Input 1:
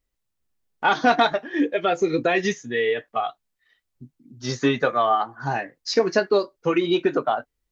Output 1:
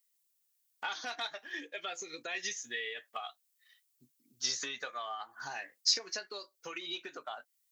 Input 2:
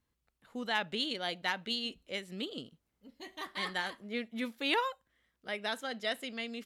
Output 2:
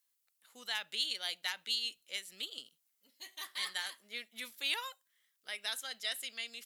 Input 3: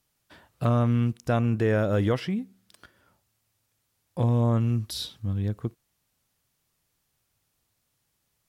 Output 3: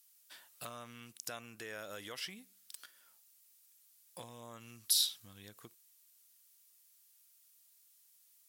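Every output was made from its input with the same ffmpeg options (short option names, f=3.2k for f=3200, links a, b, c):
-af "acompressor=threshold=-28dB:ratio=6,aderivative,volume=8dB"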